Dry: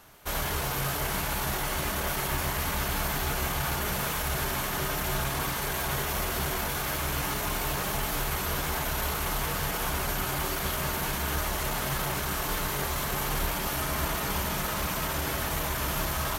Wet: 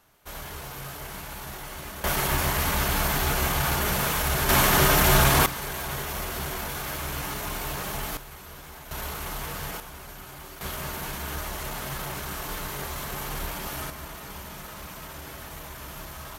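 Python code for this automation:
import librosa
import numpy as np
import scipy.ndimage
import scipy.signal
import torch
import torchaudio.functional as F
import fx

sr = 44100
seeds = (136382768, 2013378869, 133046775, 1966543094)

y = fx.gain(x, sr, db=fx.steps((0.0, -8.0), (2.04, 4.5), (4.49, 11.0), (5.46, -2.0), (8.17, -13.5), (8.91, -4.0), (9.8, -12.5), (10.61, -3.5), (13.9, -10.0)))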